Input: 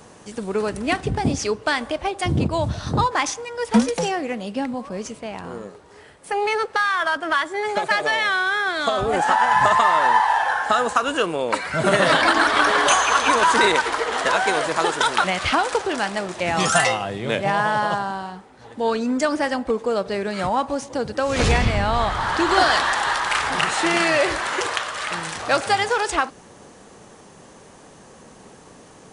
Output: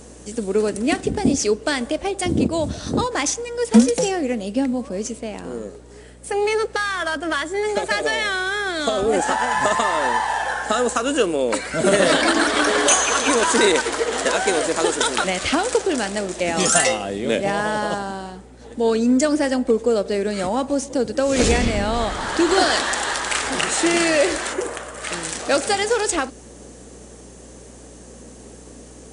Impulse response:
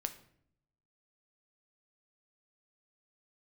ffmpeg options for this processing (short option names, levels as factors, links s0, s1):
-filter_complex "[0:a]equalizer=f=125:t=o:w=1:g=-8,equalizer=f=250:t=o:w=1:g=8,equalizer=f=500:t=o:w=1:g=5,equalizer=f=1000:t=o:w=1:g=-6,equalizer=f=8000:t=o:w=1:g=10,aeval=exprs='val(0)+0.00631*(sin(2*PI*60*n/s)+sin(2*PI*2*60*n/s)/2+sin(2*PI*3*60*n/s)/3+sin(2*PI*4*60*n/s)/4+sin(2*PI*5*60*n/s)/5)':c=same,asplit=3[s0][s1][s2];[s0]afade=t=out:st=24.52:d=0.02[s3];[s1]equalizer=f=4200:t=o:w=2.2:g=-14.5,afade=t=in:st=24.52:d=0.02,afade=t=out:st=25.03:d=0.02[s4];[s2]afade=t=in:st=25.03:d=0.02[s5];[s3][s4][s5]amix=inputs=3:normalize=0,volume=0.891"